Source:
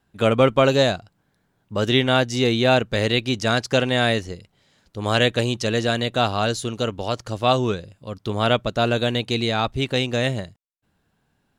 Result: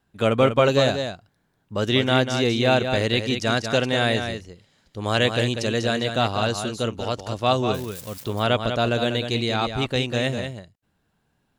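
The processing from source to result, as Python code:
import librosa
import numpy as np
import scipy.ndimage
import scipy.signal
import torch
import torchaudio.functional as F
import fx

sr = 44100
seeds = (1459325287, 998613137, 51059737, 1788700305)

p1 = fx.crossing_spikes(x, sr, level_db=-25.0, at=(7.74, 8.24))
p2 = p1 + fx.echo_single(p1, sr, ms=194, db=-7.5, dry=0)
y = p2 * 10.0 ** (-2.0 / 20.0)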